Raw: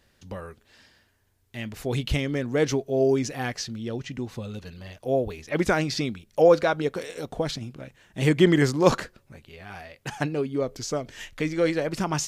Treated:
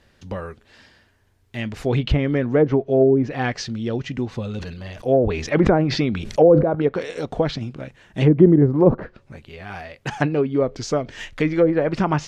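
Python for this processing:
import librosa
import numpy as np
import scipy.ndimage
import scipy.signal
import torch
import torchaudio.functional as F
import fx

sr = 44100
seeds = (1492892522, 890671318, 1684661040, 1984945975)

y = fx.lowpass(x, sr, hz=3800.0, slope=6)
y = fx.env_lowpass_down(y, sr, base_hz=460.0, full_db=-16.5)
y = fx.sustainer(y, sr, db_per_s=57.0, at=(4.57, 6.75))
y = F.gain(torch.from_numpy(y), 7.0).numpy()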